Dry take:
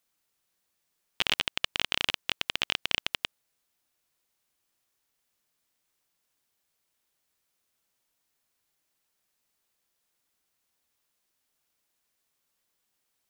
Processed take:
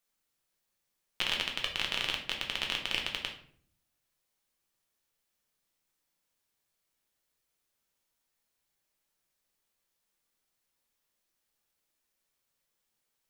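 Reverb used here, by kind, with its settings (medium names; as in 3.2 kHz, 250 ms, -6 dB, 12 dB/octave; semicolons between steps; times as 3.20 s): simulated room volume 70 m³, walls mixed, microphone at 0.7 m; trim -5.5 dB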